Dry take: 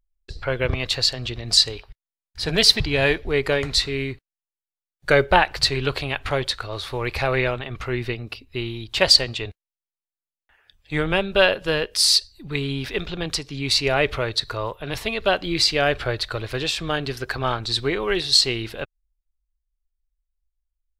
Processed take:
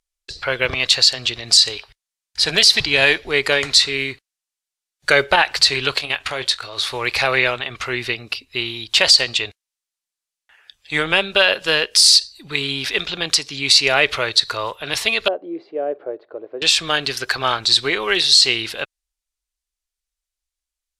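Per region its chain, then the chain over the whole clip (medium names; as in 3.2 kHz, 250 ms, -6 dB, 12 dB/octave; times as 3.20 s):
5.94–6.78 s: level held to a coarse grid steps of 9 dB + doubling 25 ms -13 dB
15.28–16.62 s: Butterworth band-pass 420 Hz, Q 1.3 + distance through air 100 m
whole clip: low-pass 8.5 kHz 12 dB/octave; tilt EQ +3.5 dB/octave; loudness maximiser +5.5 dB; trim -1 dB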